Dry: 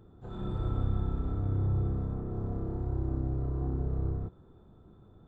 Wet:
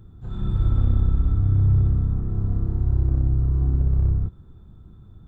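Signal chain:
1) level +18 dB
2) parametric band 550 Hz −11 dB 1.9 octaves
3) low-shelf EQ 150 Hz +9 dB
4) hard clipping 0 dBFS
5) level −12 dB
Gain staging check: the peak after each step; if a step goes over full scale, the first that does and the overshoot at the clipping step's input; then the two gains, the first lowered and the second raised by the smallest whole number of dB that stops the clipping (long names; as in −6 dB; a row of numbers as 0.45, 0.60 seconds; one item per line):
+0.5, −0.5, +6.0, 0.0, −12.0 dBFS
step 1, 6.0 dB
step 1 +12 dB, step 5 −6 dB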